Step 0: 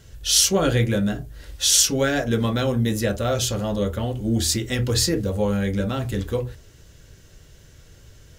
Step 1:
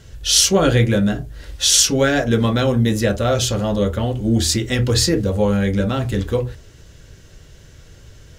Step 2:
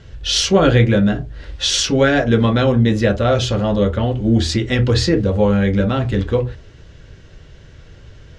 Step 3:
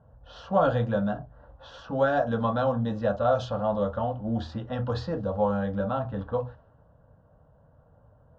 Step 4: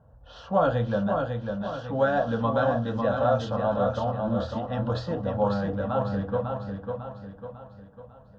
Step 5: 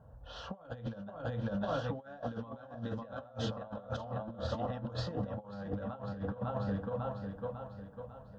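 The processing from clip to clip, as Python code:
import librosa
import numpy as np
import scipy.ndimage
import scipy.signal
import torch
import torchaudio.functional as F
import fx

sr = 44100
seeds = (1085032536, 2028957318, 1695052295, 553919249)

y1 = fx.high_shelf(x, sr, hz=11000.0, db=-10.0)
y1 = y1 * librosa.db_to_amplitude(5.0)
y2 = scipy.signal.sosfilt(scipy.signal.butter(2, 3800.0, 'lowpass', fs=sr, output='sos'), y1)
y2 = y2 * librosa.db_to_amplitude(2.5)
y3 = fx.bandpass_q(y2, sr, hz=680.0, q=0.65)
y3 = fx.env_lowpass(y3, sr, base_hz=860.0, full_db=-12.5)
y3 = fx.fixed_phaser(y3, sr, hz=900.0, stages=4)
y3 = y3 * librosa.db_to_amplitude(-2.0)
y4 = fx.echo_feedback(y3, sr, ms=549, feedback_pct=45, wet_db=-5)
y5 = fx.over_compress(y4, sr, threshold_db=-32.0, ratio=-0.5)
y5 = y5 * librosa.db_to_amplitude(-6.0)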